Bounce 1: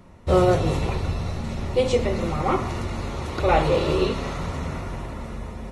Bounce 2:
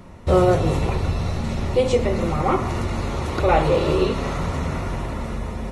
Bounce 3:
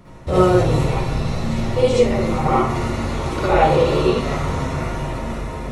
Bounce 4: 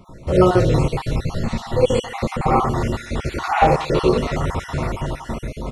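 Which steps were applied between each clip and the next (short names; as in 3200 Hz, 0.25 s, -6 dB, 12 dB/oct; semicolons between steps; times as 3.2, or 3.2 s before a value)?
in parallel at +0.5 dB: compressor, threshold -29 dBFS, peak gain reduction 15 dB; on the sum: dynamic EQ 4000 Hz, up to -3 dB, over -37 dBFS, Q 0.79
reverb RT60 0.35 s, pre-delay 48 ms, DRR -6 dB; gain -4 dB
random spectral dropouts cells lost 39%; echo 0.137 s -19.5 dB; gain +1 dB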